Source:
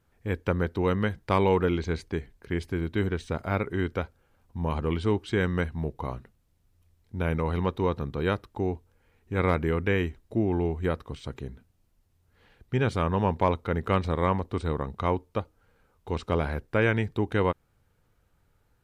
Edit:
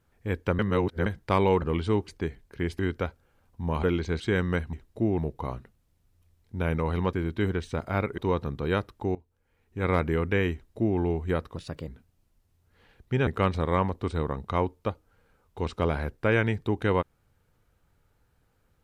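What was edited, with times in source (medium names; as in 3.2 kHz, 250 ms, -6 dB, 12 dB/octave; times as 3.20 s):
0.59–1.06 s: reverse
1.62–1.99 s: swap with 4.79–5.25 s
2.70–3.75 s: move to 7.73 s
8.70–9.54 s: fade in, from -19.5 dB
10.08–10.53 s: copy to 5.78 s
11.11–11.49 s: speed 119%
12.88–13.77 s: delete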